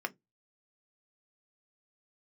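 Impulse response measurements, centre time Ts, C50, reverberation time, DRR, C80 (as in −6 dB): 3 ms, 27.0 dB, 0.15 s, 7.0 dB, 39.0 dB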